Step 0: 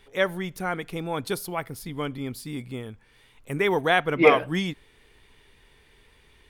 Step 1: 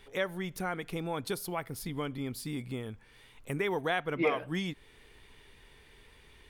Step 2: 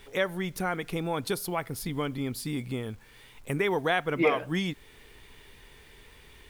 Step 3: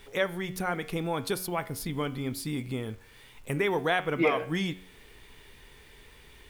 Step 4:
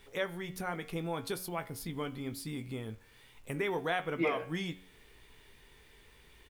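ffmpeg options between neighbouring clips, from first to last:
-af "acompressor=threshold=0.0178:ratio=2"
-af "acrusher=bits=10:mix=0:aa=0.000001,volume=1.68"
-af "bandreject=f=92.31:t=h:w=4,bandreject=f=184.62:t=h:w=4,bandreject=f=276.93:t=h:w=4,bandreject=f=369.24:t=h:w=4,bandreject=f=461.55:t=h:w=4,bandreject=f=553.86:t=h:w=4,bandreject=f=646.17:t=h:w=4,bandreject=f=738.48:t=h:w=4,bandreject=f=830.79:t=h:w=4,bandreject=f=923.1:t=h:w=4,bandreject=f=1015.41:t=h:w=4,bandreject=f=1107.72:t=h:w=4,bandreject=f=1200.03:t=h:w=4,bandreject=f=1292.34:t=h:w=4,bandreject=f=1384.65:t=h:w=4,bandreject=f=1476.96:t=h:w=4,bandreject=f=1569.27:t=h:w=4,bandreject=f=1661.58:t=h:w=4,bandreject=f=1753.89:t=h:w=4,bandreject=f=1846.2:t=h:w=4,bandreject=f=1938.51:t=h:w=4,bandreject=f=2030.82:t=h:w=4,bandreject=f=2123.13:t=h:w=4,bandreject=f=2215.44:t=h:w=4,bandreject=f=2307.75:t=h:w=4,bandreject=f=2400.06:t=h:w=4,bandreject=f=2492.37:t=h:w=4,bandreject=f=2584.68:t=h:w=4,bandreject=f=2676.99:t=h:w=4,bandreject=f=2769.3:t=h:w=4,bandreject=f=2861.61:t=h:w=4,bandreject=f=2953.92:t=h:w=4,bandreject=f=3046.23:t=h:w=4,bandreject=f=3138.54:t=h:w=4,bandreject=f=3230.85:t=h:w=4,bandreject=f=3323.16:t=h:w=4,bandreject=f=3415.47:t=h:w=4,bandreject=f=3507.78:t=h:w=4"
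-filter_complex "[0:a]asplit=2[s0][s1];[s1]adelay=18,volume=0.266[s2];[s0][s2]amix=inputs=2:normalize=0,volume=0.473"

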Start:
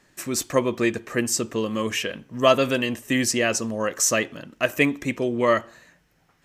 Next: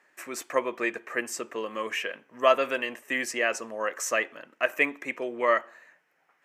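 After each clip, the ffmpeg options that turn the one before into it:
-af "highpass=500,highshelf=f=2900:t=q:w=1.5:g=-8,volume=0.75"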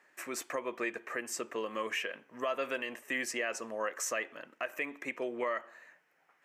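-filter_complex "[0:a]asplit=2[s0][s1];[s1]acompressor=threshold=0.02:ratio=6,volume=0.891[s2];[s0][s2]amix=inputs=2:normalize=0,alimiter=limit=0.15:level=0:latency=1:release=117,volume=0.447"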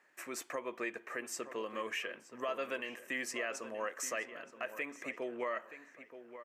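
-filter_complex "[0:a]asplit=2[s0][s1];[s1]adelay=925,lowpass=f=3200:p=1,volume=0.251,asplit=2[s2][s3];[s3]adelay=925,lowpass=f=3200:p=1,volume=0.31,asplit=2[s4][s5];[s5]adelay=925,lowpass=f=3200:p=1,volume=0.31[s6];[s0][s2][s4][s6]amix=inputs=4:normalize=0,volume=0.668"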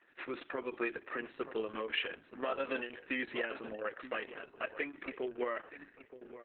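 -af "highpass=190,equalizer=f=290:t=q:w=4:g=4,equalizer=f=600:t=q:w=4:g=-5,equalizer=f=960:t=q:w=4:g=-8,equalizer=f=2100:t=q:w=4:g=-6,lowpass=f=3900:w=0.5412,lowpass=f=3900:w=1.3066,volume=1.88" -ar 48000 -c:a libopus -b:a 6k

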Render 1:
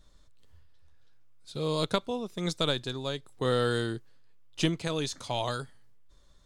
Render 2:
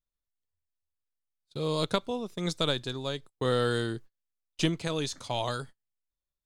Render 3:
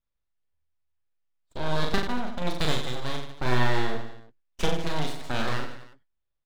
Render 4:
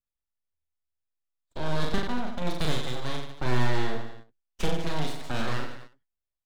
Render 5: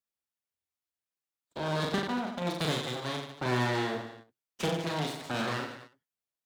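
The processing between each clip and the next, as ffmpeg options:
-af "agate=range=0.0224:threshold=0.00708:ratio=16:detection=peak"
-af "lowpass=3000,aeval=exprs='abs(val(0))':c=same,aecho=1:1:40|90|152.5|230.6|328.3:0.631|0.398|0.251|0.158|0.1,volume=1.5"
-filter_complex "[0:a]agate=range=0.355:threshold=0.00891:ratio=16:detection=peak,acrossover=split=360[s0][s1];[s1]asoftclip=type=tanh:threshold=0.0422[s2];[s0][s2]amix=inputs=2:normalize=0"
-af "highpass=140"

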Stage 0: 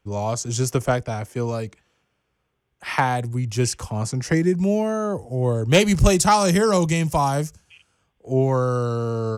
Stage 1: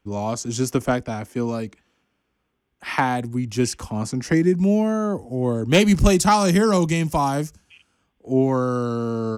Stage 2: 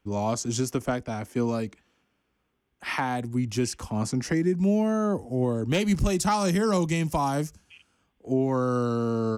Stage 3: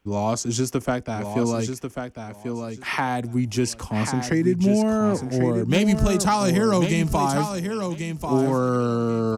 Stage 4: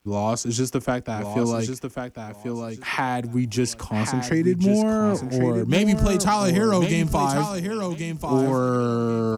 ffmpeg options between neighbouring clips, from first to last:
-af "equalizer=f=125:t=o:w=1:g=-6,equalizer=f=250:t=o:w=1:g=8,equalizer=f=500:t=o:w=1:g=-3,equalizer=f=8000:t=o:w=1:g=-3"
-af "alimiter=limit=0.211:level=0:latency=1:release=433,volume=0.841"
-af "aecho=1:1:1091|2182|3273:0.447|0.0804|0.0145,volume=1.5"
-af "acrusher=bits=10:mix=0:aa=0.000001"

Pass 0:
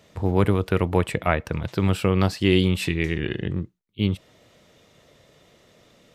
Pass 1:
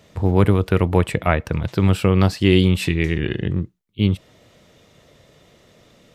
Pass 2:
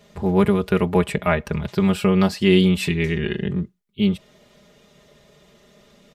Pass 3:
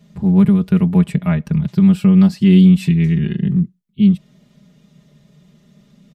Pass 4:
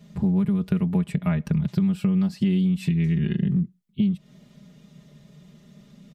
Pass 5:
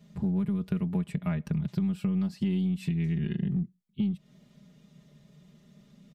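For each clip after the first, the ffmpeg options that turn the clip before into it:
-af "lowshelf=f=200:g=4,volume=1.33"
-af "aecho=1:1:4.9:0.86,volume=0.708"
-af "firequalizer=gain_entry='entry(100,0);entry(150,13);entry(410,-6);entry(4700,-3)':delay=0.05:min_phase=1,volume=0.841"
-af "acompressor=threshold=0.112:ratio=10"
-af "aeval=exprs='0.316*(cos(1*acos(clip(val(0)/0.316,-1,1)))-cos(1*PI/2))+0.00282*(cos(8*acos(clip(val(0)/0.316,-1,1)))-cos(8*PI/2))':c=same,volume=0.473"

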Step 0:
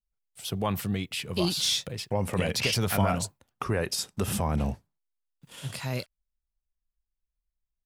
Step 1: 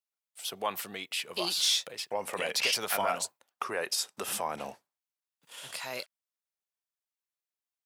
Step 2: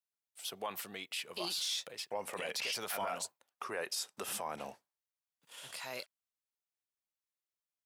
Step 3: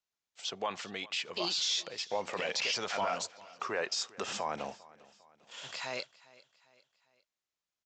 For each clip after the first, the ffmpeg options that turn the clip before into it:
-af "highpass=570"
-af "alimiter=limit=0.075:level=0:latency=1:release=16,volume=0.562"
-af "aecho=1:1:401|802|1203:0.0841|0.0395|0.0186,aresample=16000,aresample=44100,volume=1.78"

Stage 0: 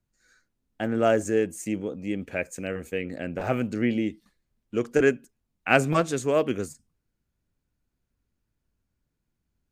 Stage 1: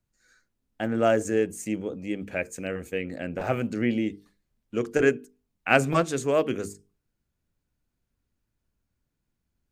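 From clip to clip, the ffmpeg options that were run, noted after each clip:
-af "bandreject=f=50:t=h:w=6,bandreject=f=100:t=h:w=6,bandreject=f=150:t=h:w=6,bandreject=f=200:t=h:w=6,bandreject=f=250:t=h:w=6,bandreject=f=300:t=h:w=6,bandreject=f=350:t=h:w=6,bandreject=f=400:t=h:w=6,bandreject=f=450:t=h:w=6"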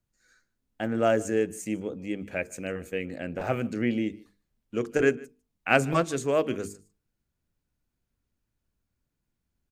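-af "aecho=1:1:151:0.0668,volume=0.841"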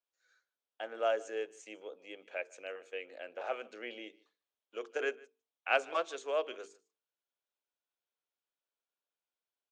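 -af "highpass=f=480:w=0.5412,highpass=f=480:w=1.3066,equalizer=f=1900:t=q:w=4:g=-5,equalizer=f=3300:t=q:w=4:g=5,equalizer=f=4800:t=q:w=4:g=-5,lowpass=f=5900:w=0.5412,lowpass=f=5900:w=1.3066,volume=0.473"

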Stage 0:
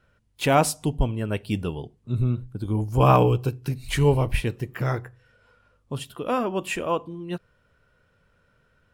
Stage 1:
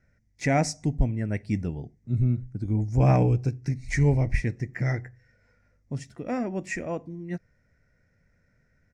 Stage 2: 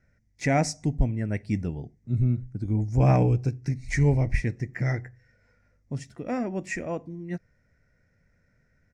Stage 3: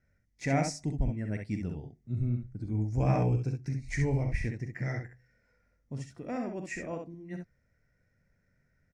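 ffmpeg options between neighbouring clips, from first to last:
-af "firequalizer=gain_entry='entry(260,0);entry(420,-8);entry(700,-4);entry(1100,-18);entry(2000,6);entry(3000,-22);entry(5700,3);entry(12000,-27)':delay=0.05:min_phase=1"
-af anull
-af "aecho=1:1:44|66:0.282|0.531,volume=0.447"

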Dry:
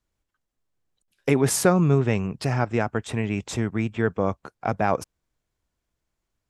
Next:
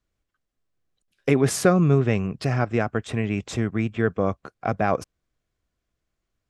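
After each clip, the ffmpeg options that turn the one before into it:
-af "highshelf=f=9100:g=-11,bandreject=f=900:w=5.9,volume=1.12"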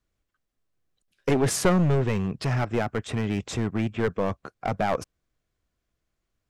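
-af "aeval=exprs='clip(val(0),-1,0.1)':c=same"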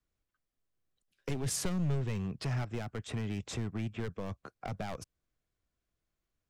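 -filter_complex "[0:a]acrossover=split=170|3000[s0][s1][s2];[s1]acompressor=threshold=0.0251:ratio=6[s3];[s0][s3][s2]amix=inputs=3:normalize=0,volume=0.473"

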